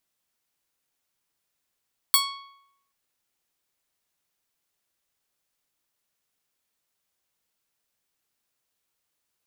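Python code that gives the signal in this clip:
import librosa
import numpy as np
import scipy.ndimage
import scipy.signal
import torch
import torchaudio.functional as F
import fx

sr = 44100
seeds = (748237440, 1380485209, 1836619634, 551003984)

y = fx.pluck(sr, length_s=0.78, note=85, decay_s=0.8, pick=0.44, brightness='bright')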